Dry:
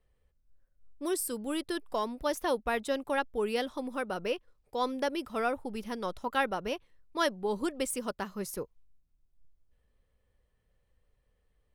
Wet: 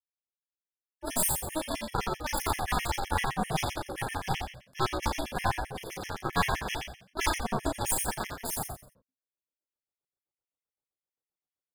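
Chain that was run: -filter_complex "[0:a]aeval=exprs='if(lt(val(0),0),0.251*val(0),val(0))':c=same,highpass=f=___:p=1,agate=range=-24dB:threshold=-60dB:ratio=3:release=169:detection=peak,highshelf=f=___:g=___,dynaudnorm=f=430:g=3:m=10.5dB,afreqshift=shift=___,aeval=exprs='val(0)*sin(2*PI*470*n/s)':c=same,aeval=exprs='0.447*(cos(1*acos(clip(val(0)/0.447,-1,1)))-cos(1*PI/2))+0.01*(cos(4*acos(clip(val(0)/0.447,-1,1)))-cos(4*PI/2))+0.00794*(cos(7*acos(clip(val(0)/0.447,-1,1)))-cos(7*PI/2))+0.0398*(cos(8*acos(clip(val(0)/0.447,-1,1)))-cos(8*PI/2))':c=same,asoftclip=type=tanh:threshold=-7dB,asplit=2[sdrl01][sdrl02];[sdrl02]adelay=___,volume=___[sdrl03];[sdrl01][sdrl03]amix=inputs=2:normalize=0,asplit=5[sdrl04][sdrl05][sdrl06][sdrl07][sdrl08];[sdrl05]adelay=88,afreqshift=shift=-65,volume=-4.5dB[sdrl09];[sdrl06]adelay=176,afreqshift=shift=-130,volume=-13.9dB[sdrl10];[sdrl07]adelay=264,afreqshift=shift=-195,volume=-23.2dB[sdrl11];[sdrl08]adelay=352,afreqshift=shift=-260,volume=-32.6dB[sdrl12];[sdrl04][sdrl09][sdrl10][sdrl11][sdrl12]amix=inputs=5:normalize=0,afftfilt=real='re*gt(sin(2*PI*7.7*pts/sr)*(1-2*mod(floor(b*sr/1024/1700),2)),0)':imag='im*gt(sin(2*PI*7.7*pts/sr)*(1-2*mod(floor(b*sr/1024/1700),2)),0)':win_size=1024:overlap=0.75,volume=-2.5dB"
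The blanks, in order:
250, 5700, 10, -160, 35, -2dB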